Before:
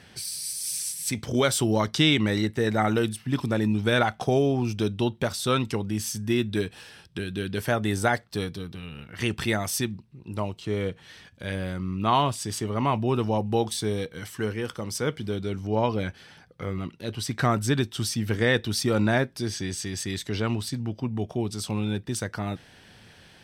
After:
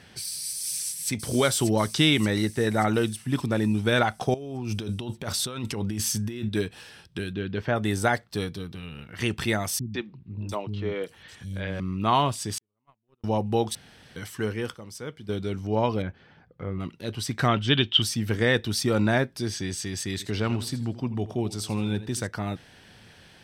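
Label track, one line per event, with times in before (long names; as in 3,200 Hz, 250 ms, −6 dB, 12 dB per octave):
0.610000	1.110000	delay throw 580 ms, feedback 60%, level −7.5 dB
4.340000	6.490000	compressor whose output falls as the input rises −31 dBFS
7.330000	7.760000	high-frequency loss of the air 220 metres
9.790000	11.800000	three-band delay without the direct sound lows, mids, highs 150/700 ms, splits 240/4,400 Hz
12.580000	13.240000	noise gate −18 dBFS, range −55 dB
13.750000	14.160000	fill with room tone
14.750000	15.290000	clip gain −9.5 dB
16.020000	16.800000	head-to-tape spacing loss at 10 kHz 33 dB
17.480000	18.020000	low-pass with resonance 3,100 Hz, resonance Q 13
20.110000	22.270000	feedback echo with a swinging delay time 83 ms, feedback 35%, depth 90 cents, level −15 dB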